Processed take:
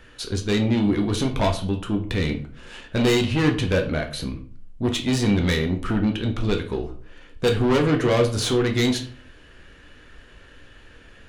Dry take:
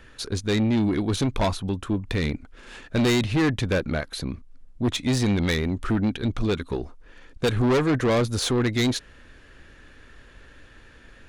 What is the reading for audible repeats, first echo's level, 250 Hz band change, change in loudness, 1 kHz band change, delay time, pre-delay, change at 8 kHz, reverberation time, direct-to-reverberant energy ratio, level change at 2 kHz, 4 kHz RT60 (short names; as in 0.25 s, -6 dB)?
none, none, +1.5 dB, +2.0 dB, +1.5 dB, none, 7 ms, +1.0 dB, 0.50 s, 3.0 dB, +1.5 dB, 0.35 s